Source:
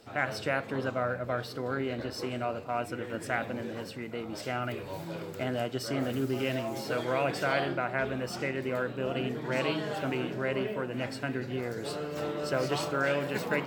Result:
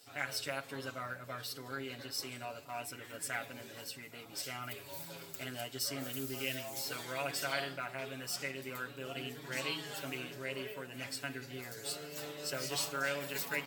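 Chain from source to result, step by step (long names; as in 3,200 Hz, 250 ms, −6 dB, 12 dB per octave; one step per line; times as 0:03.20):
first-order pre-emphasis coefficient 0.9
comb filter 7.2 ms, depth 84%
level +3.5 dB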